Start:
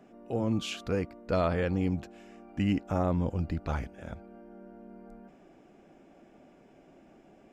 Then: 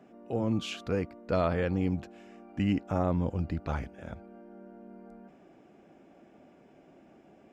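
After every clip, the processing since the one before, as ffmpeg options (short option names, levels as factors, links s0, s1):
-af "highpass=57,highshelf=f=6300:g=-6"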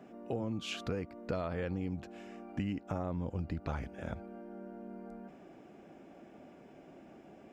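-af "acompressor=threshold=0.0178:ratio=10,volume=1.33"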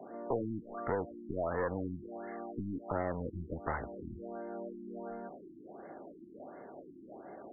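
-filter_complex "[0:a]aeval=exprs='clip(val(0),-1,0.00891)':c=same,acrossover=split=350 4800:gain=0.224 1 0.0891[s0][s1][s2];[s0][s1][s2]amix=inputs=3:normalize=0,afftfilt=real='re*lt(b*sr/1024,350*pow(2200/350,0.5+0.5*sin(2*PI*1.4*pts/sr)))':imag='im*lt(b*sr/1024,350*pow(2200/350,0.5+0.5*sin(2*PI*1.4*pts/sr)))':win_size=1024:overlap=0.75,volume=2.99"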